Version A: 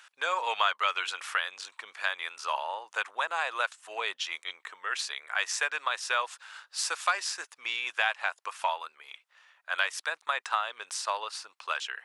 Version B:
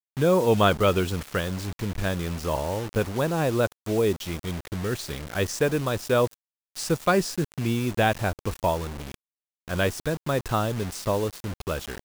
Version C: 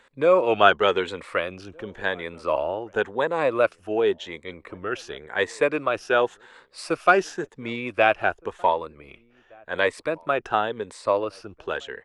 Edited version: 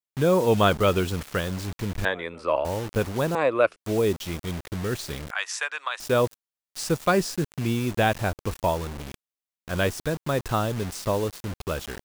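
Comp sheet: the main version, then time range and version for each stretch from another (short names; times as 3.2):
B
2.05–2.65 from C
3.35–3.76 from C
5.31–6 from A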